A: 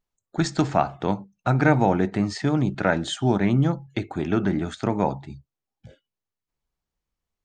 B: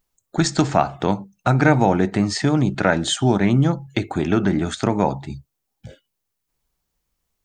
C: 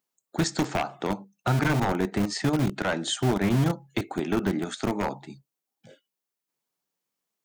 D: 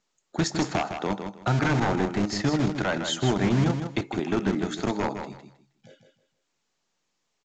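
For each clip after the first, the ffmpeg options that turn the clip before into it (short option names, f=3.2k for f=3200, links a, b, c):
-filter_complex "[0:a]highshelf=f=6.8k:g=9.5,asplit=2[a][b];[b]acompressor=threshold=-27dB:ratio=6,volume=0.5dB[c];[a][c]amix=inputs=2:normalize=0,volume=1dB"
-filter_complex "[0:a]acrossover=split=160|1800[a][b][c];[a]acrusher=bits=3:mix=0:aa=0.000001[d];[b]aeval=exprs='0.251*(abs(mod(val(0)/0.251+3,4)-2)-1)':c=same[e];[d][e][c]amix=inputs=3:normalize=0,volume=-6.5dB"
-filter_complex "[0:a]asplit=2[a][b];[b]aecho=0:1:158|316|474:0.422|0.0928|0.0204[c];[a][c]amix=inputs=2:normalize=0" -ar 16000 -c:a pcm_mulaw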